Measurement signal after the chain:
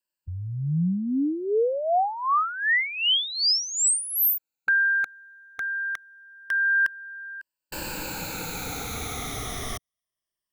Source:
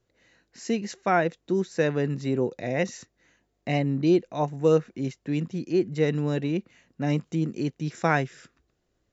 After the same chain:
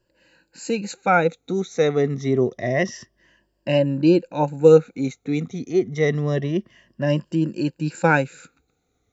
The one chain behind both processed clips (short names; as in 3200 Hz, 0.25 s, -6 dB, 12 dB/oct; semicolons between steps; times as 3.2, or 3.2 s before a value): moving spectral ripple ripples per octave 1.3, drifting -0.27 Hz, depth 15 dB; dynamic EQ 560 Hz, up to +6 dB, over -43 dBFS, Q 7.5; gain +2 dB